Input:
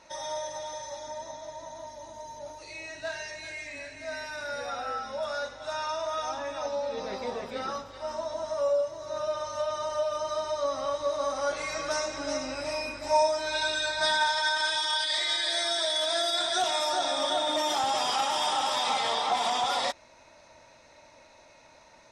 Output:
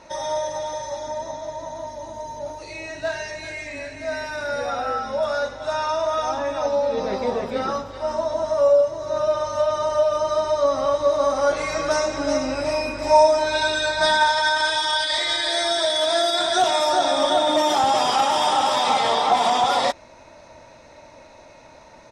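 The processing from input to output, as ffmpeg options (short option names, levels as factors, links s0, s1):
-filter_complex "[0:a]asplit=2[s0][s1];[s1]afade=t=in:st=12.7:d=0.01,afade=t=out:st=13.15:d=0.01,aecho=0:1:280|560|840:0.354813|0.106444|0.0319332[s2];[s0][s2]amix=inputs=2:normalize=0,asplit=2[s3][s4];[s4]afade=t=in:st=14.3:d=0.01,afade=t=out:st=14.7:d=0.01,aecho=0:1:510|1020|1530|2040|2550|3060|3570|4080:0.158489|0.110943|0.0776598|0.0543618|0.0380533|0.0266373|0.0186461|0.0130523[s5];[s3][s5]amix=inputs=2:normalize=0,tiltshelf=f=1100:g=4,volume=2.51"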